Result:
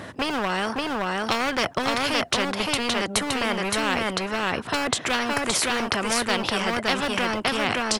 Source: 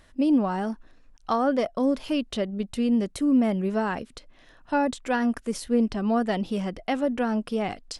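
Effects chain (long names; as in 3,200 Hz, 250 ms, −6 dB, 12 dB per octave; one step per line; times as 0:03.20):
high-pass filter 110 Hz 24 dB per octave
high-shelf EQ 2,200 Hz −11.5 dB
in parallel at −4 dB: hard clipping −22.5 dBFS, distortion −11 dB
on the sum: single-tap delay 568 ms −3.5 dB
every bin compressed towards the loudest bin 4 to 1
level +7.5 dB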